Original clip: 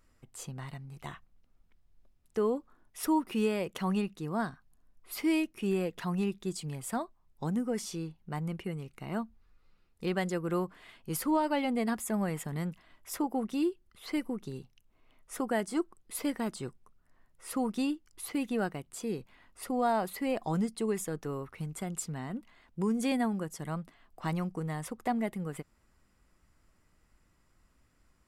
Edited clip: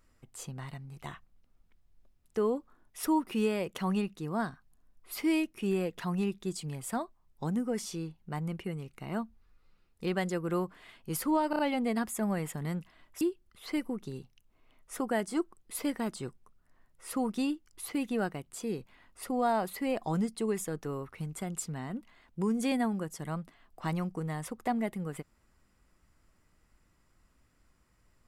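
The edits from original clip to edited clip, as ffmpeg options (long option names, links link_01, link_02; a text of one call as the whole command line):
ffmpeg -i in.wav -filter_complex "[0:a]asplit=5[link_01][link_02][link_03][link_04][link_05];[link_01]atrim=end=11.532[link_06];[link_02]atrim=start=11.498:end=11.532[link_07];[link_03]atrim=start=11.498:end=11.532[link_08];[link_04]atrim=start=11.498:end=13.122[link_09];[link_05]atrim=start=13.608[link_10];[link_06][link_07]acrossfade=duration=0.004:curve1=hsin:curve2=hsin[link_11];[link_11][link_08]acrossfade=duration=0.004:curve1=hsin:curve2=hsin[link_12];[link_12][link_09]acrossfade=duration=0.004:curve1=hsin:curve2=hsin[link_13];[link_13][link_10]acrossfade=duration=0.004:curve1=hsin:curve2=hsin" out.wav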